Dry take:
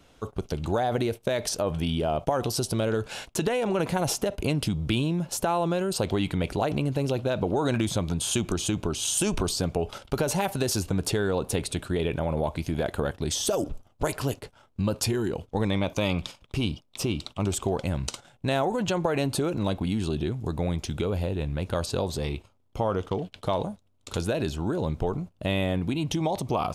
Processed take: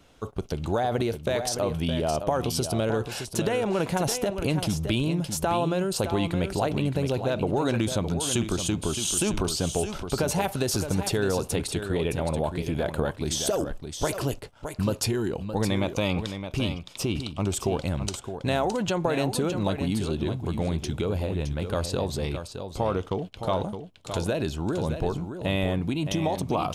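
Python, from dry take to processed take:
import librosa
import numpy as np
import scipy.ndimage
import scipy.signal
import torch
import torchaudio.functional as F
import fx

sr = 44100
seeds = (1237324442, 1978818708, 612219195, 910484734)

y = x + 10.0 ** (-8.5 / 20.0) * np.pad(x, (int(616 * sr / 1000.0), 0))[:len(x)]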